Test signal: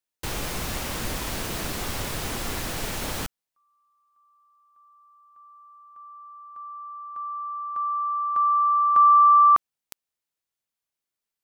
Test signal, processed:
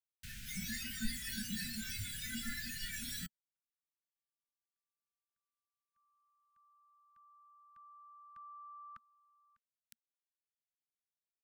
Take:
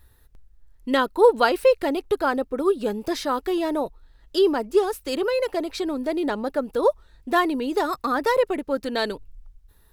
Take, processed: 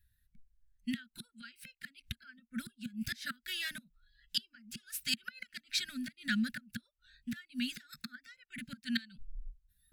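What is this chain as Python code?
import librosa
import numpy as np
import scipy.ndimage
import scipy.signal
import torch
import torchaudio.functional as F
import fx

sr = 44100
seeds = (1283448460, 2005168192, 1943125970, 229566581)

y = fx.gate_flip(x, sr, shuts_db=-15.0, range_db=-26)
y = scipy.signal.sosfilt(scipy.signal.ellip(4, 1.0, 40, [230.0, 1500.0], 'bandstop', fs=sr, output='sos'), y)
y = fx.noise_reduce_blind(y, sr, reduce_db=19)
y = y * 10.0 ** (2.0 / 20.0)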